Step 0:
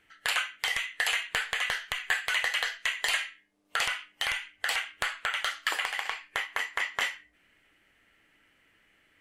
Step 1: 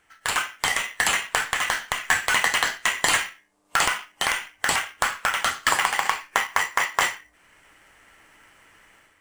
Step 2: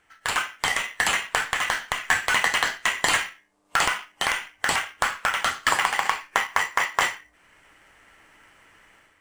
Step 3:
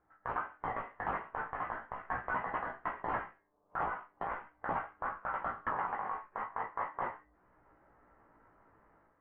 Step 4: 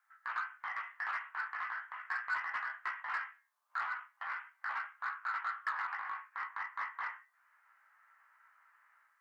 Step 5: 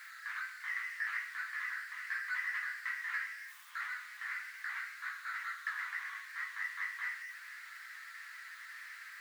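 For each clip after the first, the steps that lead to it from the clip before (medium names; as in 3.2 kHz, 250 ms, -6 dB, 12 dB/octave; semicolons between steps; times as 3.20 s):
graphic EQ 250/1000/8000 Hz -4/+9/+11 dB; level rider gain up to 9.5 dB; in parallel at -7.5 dB: sample-rate reducer 3.9 kHz, jitter 0%; on the sum: trim -2 dB
treble shelf 6.9 kHz -5.5 dB
low-pass 1.2 kHz 24 dB/octave; peak limiter -18 dBFS, peak gain reduction 11.5 dB; chorus 0.4 Hz, delay 16 ms, depth 2.2 ms; trim -1.5 dB
high-pass 1.4 kHz 24 dB/octave; in parallel at 0 dB: saturation -39 dBFS, distortion -13 dB; on the sum: trim +1 dB
jump at every zero crossing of -41 dBFS; resonant high-pass 1.9 kHz, resonance Q 3.5; flange 0.78 Hz, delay 8.5 ms, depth 4.3 ms, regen -50%; trim -4 dB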